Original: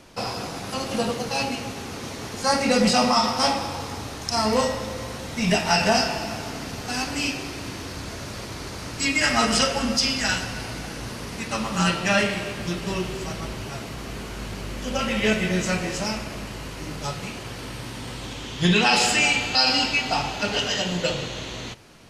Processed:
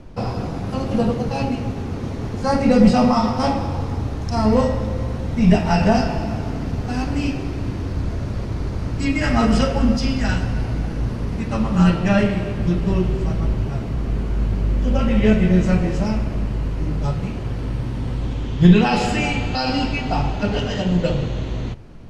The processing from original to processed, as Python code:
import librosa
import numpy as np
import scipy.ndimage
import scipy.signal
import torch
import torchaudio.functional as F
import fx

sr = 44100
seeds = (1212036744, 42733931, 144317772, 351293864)

y = fx.tilt_eq(x, sr, slope=-4.0)